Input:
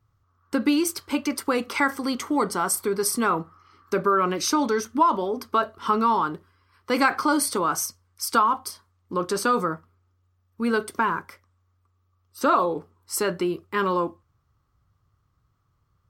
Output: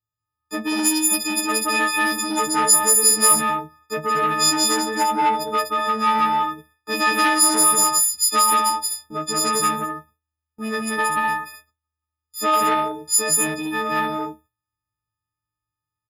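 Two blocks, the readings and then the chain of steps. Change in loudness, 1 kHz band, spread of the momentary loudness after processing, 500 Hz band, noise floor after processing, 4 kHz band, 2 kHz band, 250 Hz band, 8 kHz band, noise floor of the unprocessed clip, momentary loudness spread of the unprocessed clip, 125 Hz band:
+6.0 dB, +4.0 dB, 14 LU, -1.5 dB, under -85 dBFS, +10.5 dB, +5.5 dB, -0.5 dB, +13.5 dB, -69 dBFS, 9 LU, -0.5 dB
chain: partials quantised in pitch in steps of 6 st; gate with hold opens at -39 dBFS; on a send: loudspeakers at several distances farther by 62 m -1 dB, 85 m -4 dB; on the sum: transformer saturation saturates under 1.8 kHz; trim -3 dB

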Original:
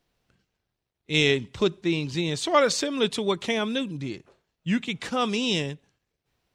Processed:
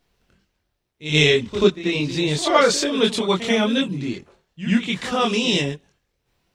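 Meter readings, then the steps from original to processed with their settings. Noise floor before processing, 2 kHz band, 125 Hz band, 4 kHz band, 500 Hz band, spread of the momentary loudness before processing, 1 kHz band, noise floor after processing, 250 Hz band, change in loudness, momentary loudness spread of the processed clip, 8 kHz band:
-82 dBFS, +5.5 dB, +6.0 dB, +6.0 dB, +5.5 dB, 13 LU, +5.0 dB, -74 dBFS, +6.0 dB, +5.5 dB, 12 LU, +5.5 dB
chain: chorus voices 6, 1.1 Hz, delay 24 ms, depth 3 ms; reverse echo 86 ms -11.5 dB; trim +8.5 dB

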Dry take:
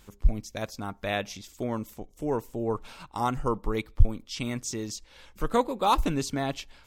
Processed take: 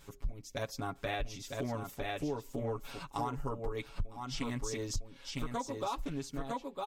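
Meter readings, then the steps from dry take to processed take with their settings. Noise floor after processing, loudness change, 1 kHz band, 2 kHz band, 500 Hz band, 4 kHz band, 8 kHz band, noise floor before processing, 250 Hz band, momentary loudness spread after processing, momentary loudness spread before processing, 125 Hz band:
-57 dBFS, -8.5 dB, -9.5 dB, -6.5 dB, -8.0 dB, -6.5 dB, -6.0 dB, -57 dBFS, -8.0 dB, 5 LU, 11 LU, -8.5 dB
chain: fade out at the end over 2.09 s; comb 7.2 ms, depth 100%; delay 956 ms -6 dB; compression 8:1, threshold -29 dBFS, peak gain reduction 21.5 dB; loudspeaker Doppler distortion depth 0.22 ms; trim -3.5 dB

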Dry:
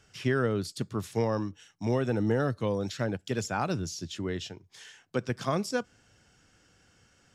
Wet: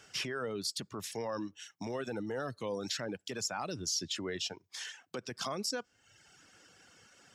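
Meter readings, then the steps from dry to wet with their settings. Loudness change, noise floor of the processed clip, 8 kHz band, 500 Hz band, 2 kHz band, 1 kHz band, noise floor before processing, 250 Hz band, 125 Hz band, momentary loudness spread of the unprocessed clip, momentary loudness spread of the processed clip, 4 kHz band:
-6.5 dB, -73 dBFS, +4.0 dB, -8.5 dB, -5.0 dB, -7.0 dB, -65 dBFS, -10.0 dB, -15.5 dB, 10 LU, 9 LU, +4.0 dB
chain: in parallel at +1 dB: compression, threshold -39 dBFS, peak gain reduction 16 dB; on the sum: reverb removal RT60 0.83 s; peak limiter -26 dBFS, peak gain reduction 11.5 dB; dynamic bell 5.2 kHz, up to +4 dB, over -55 dBFS, Q 2.1; high-pass 360 Hz 6 dB/octave

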